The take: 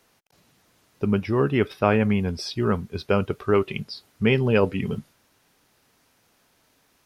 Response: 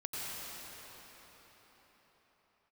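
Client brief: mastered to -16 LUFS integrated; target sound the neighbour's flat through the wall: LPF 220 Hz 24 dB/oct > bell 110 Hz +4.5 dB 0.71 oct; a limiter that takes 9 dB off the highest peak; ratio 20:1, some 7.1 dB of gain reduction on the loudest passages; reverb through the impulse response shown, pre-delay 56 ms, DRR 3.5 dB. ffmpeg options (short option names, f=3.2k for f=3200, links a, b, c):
-filter_complex "[0:a]acompressor=threshold=-21dB:ratio=20,alimiter=limit=-20dB:level=0:latency=1,asplit=2[a][b];[1:a]atrim=start_sample=2205,adelay=56[c];[b][c]afir=irnorm=-1:irlink=0,volume=-7dB[d];[a][d]amix=inputs=2:normalize=0,lowpass=f=220:w=0.5412,lowpass=f=220:w=1.3066,equalizer=f=110:t=o:w=0.71:g=4.5,volume=16dB"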